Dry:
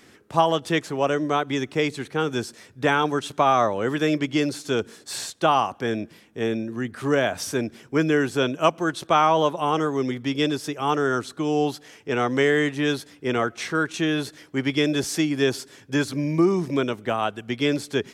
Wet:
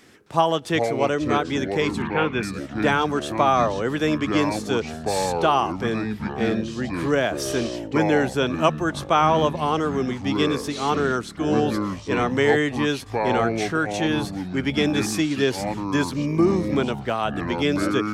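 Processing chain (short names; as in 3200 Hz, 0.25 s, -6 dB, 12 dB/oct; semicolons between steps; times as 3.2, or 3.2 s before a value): echoes that change speed 0.263 s, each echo -6 st, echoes 3, each echo -6 dB; 2.02–2.43 synth low-pass 2400 Hz, resonance Q 2.6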